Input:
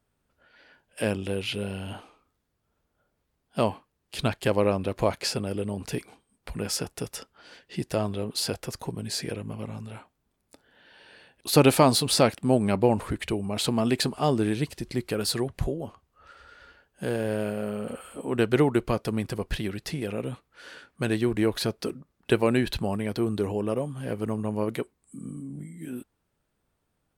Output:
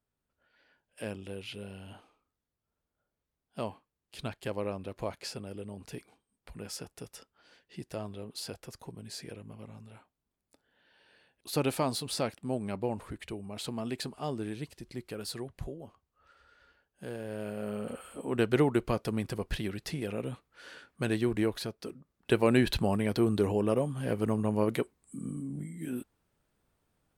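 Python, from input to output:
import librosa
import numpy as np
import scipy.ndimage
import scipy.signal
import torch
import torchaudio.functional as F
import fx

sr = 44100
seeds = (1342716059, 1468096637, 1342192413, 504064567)

y = fx.gain(x, sr, db=fx.line((17.27, -11.5), (17.74, -4.0), (21.4, -4.0), (21.75, -11.5), (22.62, 0.0)))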